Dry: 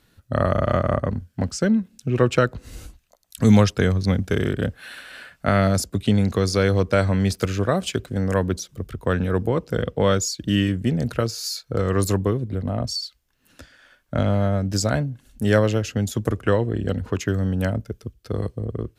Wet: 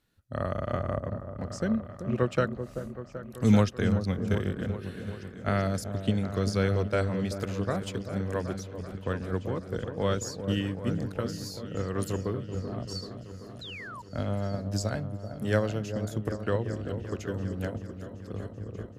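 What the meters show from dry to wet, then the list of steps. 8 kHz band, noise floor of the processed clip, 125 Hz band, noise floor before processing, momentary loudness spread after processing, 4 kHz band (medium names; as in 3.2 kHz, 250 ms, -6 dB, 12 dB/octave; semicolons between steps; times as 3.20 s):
-12.0 dB, -45 dBFS, -8.0 dB, -64 dBFS, 12 LU, -10.5 dB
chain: delay with an opening low-pass 385 ms, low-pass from 750 Hz, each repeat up 1 oct, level -6 dB; painted sound fall, 13.61–14.02 s, 900–4200 Hz -28 dBFS; upward expansion 1.5:1, over -26 dBFS; trim -6 dB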